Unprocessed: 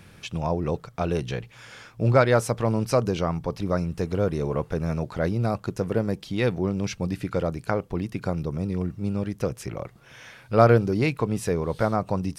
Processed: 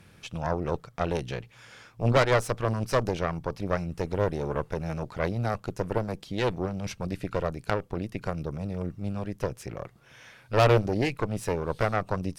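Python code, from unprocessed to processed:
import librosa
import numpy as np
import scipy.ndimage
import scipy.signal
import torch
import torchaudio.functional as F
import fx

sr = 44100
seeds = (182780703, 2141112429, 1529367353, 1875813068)

y = fx.cheby_harmonics(x, sr, harmonics=(6,), levels_db=(-11,), full_scale_db=-4.0)
y = np.clip(y, -10.0 ** (-6.0 / 20.0), 10.0 ** (-6.0 / 20.0))
y = y * 10.0 ** (-5.0 / 20.0)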